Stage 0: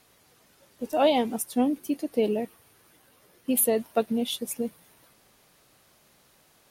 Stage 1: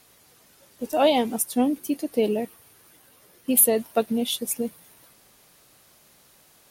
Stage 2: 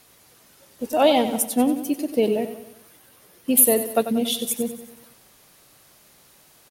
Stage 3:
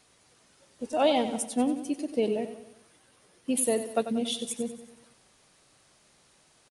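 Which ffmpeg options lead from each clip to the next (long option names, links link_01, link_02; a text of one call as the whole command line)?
ffmpeg -i in.wav -af "highshelf=frequency=5000:gain=5.5,volume=2dB" out.wav
ffmpeg -i in.wav -af "aecho=1:1:93|186|279|372|465:0.282|0.141|0.0705|0.0352|0.0176,volume=2dB" out.wav
ffmpeg -i in.wav -af "aresample=22050,aresample=44100,volume=-6.5dB" out.wav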